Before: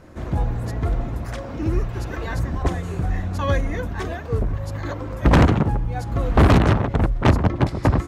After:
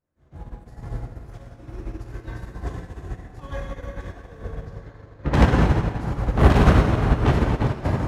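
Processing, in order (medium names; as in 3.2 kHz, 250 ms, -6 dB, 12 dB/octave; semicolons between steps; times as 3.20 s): 4.66–5.34 s: low-pass 4.9 kHz 12 dB/octave; plate-style reverb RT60 4.6 s, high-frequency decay 0.75×, DRR -6.5 dB; upward expansion 2.5:1, over -29 dBFS; trim -3.5 dB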